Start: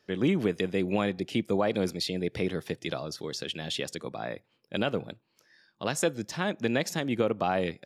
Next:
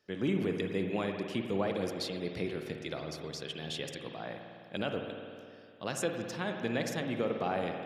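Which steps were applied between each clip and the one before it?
spring tank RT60 2.4 s, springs 51 ms, chirp 70 ms, DRR 3.5 dB; gain -6.5 dB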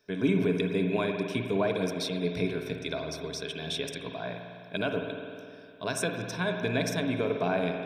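ripple EQ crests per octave 1.6, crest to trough 12 dB; gain +3 dB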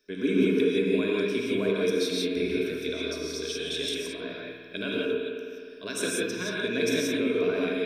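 fixed phaser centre 330 Hz, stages 4; non-linear reverb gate 0.2 s rising, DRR -3 dB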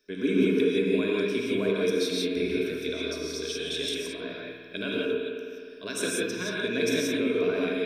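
nothing audible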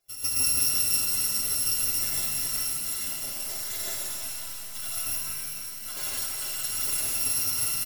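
FFT order left unsorted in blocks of 256 samples; comb 7.5 ms, depth 76%; shimmer reverb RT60 3.1 s, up +7 st, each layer -2 dB, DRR 0.5 dB; gain -6.5 dB

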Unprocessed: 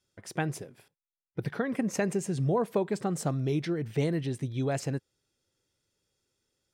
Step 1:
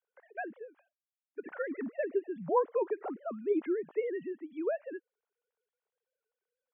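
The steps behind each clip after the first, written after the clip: sine-wave speech; three-band isolator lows -24 dB, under 260 Hz, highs -22 dB, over 2100 Hz; gain -2.5 dB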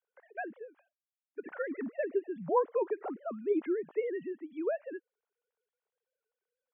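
nothing audible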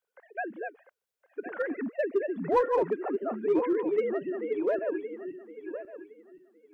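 regenerating reverse delay 0.532 s, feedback 44%, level -5 dB; in parallel at -3.5 dB: overloaded stage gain 26.5 dB

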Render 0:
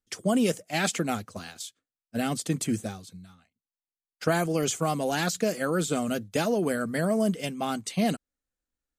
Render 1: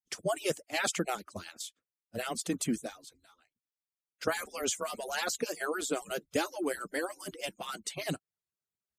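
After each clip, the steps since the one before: median-filter separation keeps percussive; gain -2.5 dB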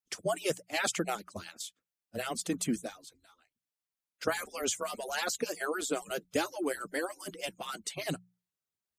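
notches 60/120/180 Hz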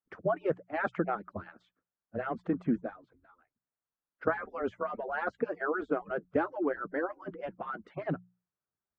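Chebyshev low-pass 1500 Hz, order 3; gain +3 dB

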